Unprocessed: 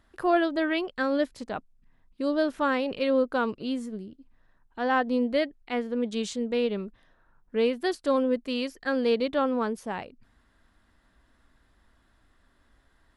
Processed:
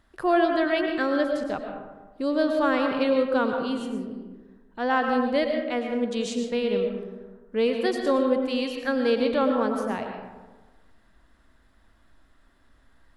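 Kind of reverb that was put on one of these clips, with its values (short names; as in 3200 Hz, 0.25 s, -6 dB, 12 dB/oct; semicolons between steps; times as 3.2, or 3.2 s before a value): digital reverb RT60 1.3 s, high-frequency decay 0.4×, pre-delay 70 ms, DRR 3.5 dB; gain +1 dB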